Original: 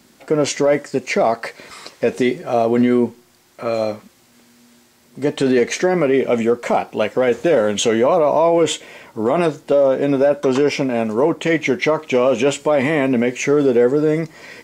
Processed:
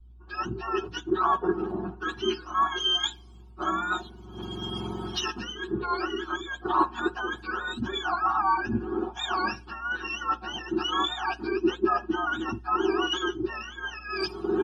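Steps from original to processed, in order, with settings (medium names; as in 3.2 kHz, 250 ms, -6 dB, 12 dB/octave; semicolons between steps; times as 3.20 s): spectrum inverted on a logarithmic axis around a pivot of 880 Hz; recorder AGC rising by 34 dB/s; tone controls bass -6 dB, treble -13 dB; band-stop 2.1 kHz, Q 18; comb 5.5 ms, depth 99%; reverse; compression 16:1, threshold -24 dBFS, peak gain reduction 17 dB; reverse; hum 60 Hz, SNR 19 dB; static phaser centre 550 Hz, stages 6; three bands expanded up and down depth 100%; trim +3.5 dB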